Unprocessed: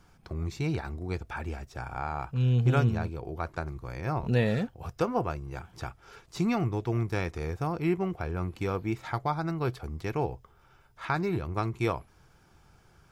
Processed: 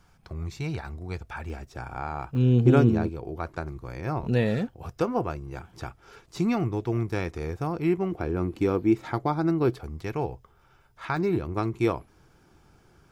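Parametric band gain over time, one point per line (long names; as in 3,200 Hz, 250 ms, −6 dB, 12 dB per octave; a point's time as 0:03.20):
parametric band 310 Hz 1.2 octaves
−4 dB
from 0:01.50 +4 dB
from 0:02.35 +15 dB
from 0:03.09 +4 dB
from 0:08.12 +12 dB
from 0:09.81 +1 dB
from 0:11.17 +7 dB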